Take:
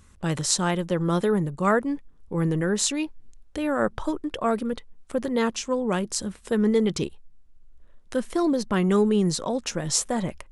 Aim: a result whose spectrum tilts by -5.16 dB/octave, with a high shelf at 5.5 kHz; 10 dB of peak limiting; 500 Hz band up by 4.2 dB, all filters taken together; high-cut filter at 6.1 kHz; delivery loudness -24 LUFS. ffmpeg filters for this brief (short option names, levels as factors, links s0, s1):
-af "lowpass=6100,equalizer=f=500:t=o:g=5,highshelf=f=5500:g=4.5,volume=1.26,alimiter=limit=0.2:level=0:latency=1"